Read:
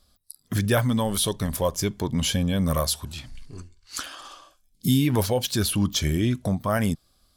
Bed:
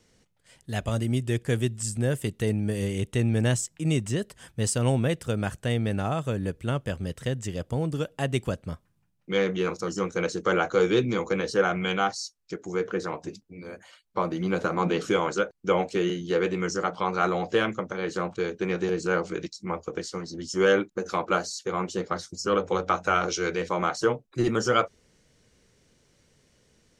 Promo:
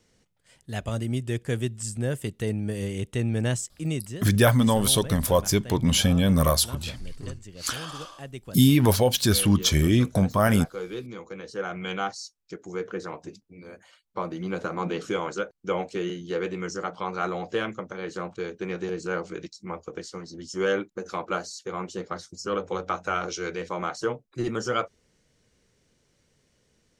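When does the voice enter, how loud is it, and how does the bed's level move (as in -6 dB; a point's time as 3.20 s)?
3.70 s, +3.0 dB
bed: 3.84 s -2 dB
4.31 s -12.5 dB
11.35 s -12.5 dB
11.93 s -4 dB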